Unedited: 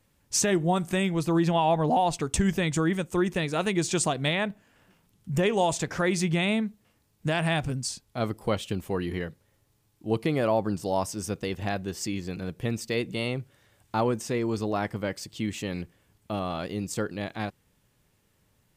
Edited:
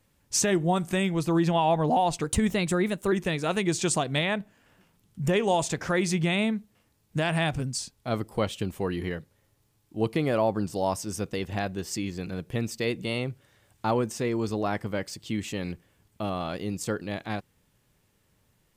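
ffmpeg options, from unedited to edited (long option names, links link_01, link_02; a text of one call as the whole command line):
ffmpeg -i in.wav -filter_complex "[0:a]asplit=3[link_01][link_02][link_03];[link_01]atrim=end=2.244[link_04];[link_02]atrim=start=2.24:end=3.22,asetpts=PTS-STARTPTS,asetrate=48951,aresample=44100,atrim=end_sample=38935,asetpts=PTS-STARTPTS[link_05];[link_03]atrim=start=3.216[link_06];[link_04][link_05]acrossfade=duration=0.004:curve1=hsin:curve2=hsin[link_07];[link_07][link_06]acrossfade=duration=0.004:curve1=hsin:curve2=hsin" out.wav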